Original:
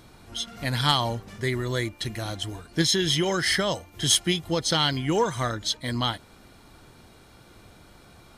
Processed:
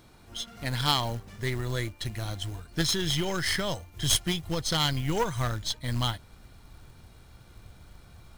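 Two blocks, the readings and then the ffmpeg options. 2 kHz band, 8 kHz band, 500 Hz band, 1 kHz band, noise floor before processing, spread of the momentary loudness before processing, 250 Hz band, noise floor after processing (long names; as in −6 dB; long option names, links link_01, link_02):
−4.5 dB, −4.0 dB, −6.0 dB, −4.0 dB, −53 dBFS, 11 LU, −5.0 dB, −54 dBFS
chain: -af "aeval=exprs='0.335*(cos(1*acos(clip(val(0)/0.335,-1,1)))-cos(1*PI/2))+0.106*(cos(2*acos(clip(val(0)/0.335,-1,1)))-cos(2*PI/2))+0.00944*(cos(3*acos(clip(val(0)/0.335,-1,1)))-cos(3*PI/2))+0.0188*(cos(6*acos(clip(val(0)/0.335,-1,1)))-cos(6*PI/2))+0.0335*(cos(8*acos(clip(val(0)/0.335,-1,1)))-cos(8*PI/2))':channel_layout=same,asubboost=boost=3.5:cutoff=140,acrusher=bits=5:mode=log:mix=0:aa=0.000001,volume=-4dB"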